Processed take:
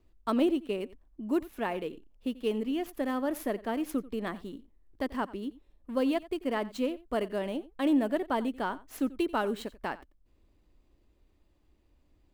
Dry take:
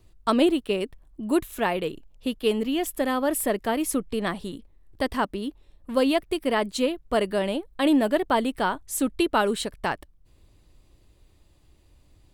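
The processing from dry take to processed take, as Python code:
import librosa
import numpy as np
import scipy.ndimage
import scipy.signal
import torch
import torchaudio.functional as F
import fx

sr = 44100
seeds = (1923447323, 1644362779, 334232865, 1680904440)

y = scipy.ndimage.median_filter(x, 5, mode='constant')
y = fx.graphic_eq(y, sr, hz=(125, 250, 4000), db=(-8, 5, -4))
y = y + 10.0 ** (-19.0 / 20.0) * np.pad(y, (int(89 * sr / 1000.0), 0))[:len(y)]
y = y * librosa.db_to_amplitude(-8.0)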